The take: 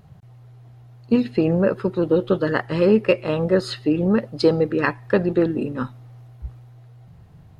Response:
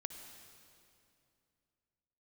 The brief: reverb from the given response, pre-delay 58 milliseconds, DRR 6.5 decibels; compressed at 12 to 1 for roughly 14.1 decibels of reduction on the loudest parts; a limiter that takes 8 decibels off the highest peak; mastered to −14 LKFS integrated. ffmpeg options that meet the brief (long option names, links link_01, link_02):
-filter_complex "[0:a]acompressor=threshold=-26dB:ratio=12,alimiter=limit=-23dB:level=0:latency=1,asplit=2[link_01][link_02];[1:a]atrim=start_sample=2205,adelay=58[link_03];[link_02][link_03]afir=irnorm=-1:irlink=0,volume=-4dB[link_04];[link_01][link_04]amix=inputs=2:normalize=0,volume=19dB"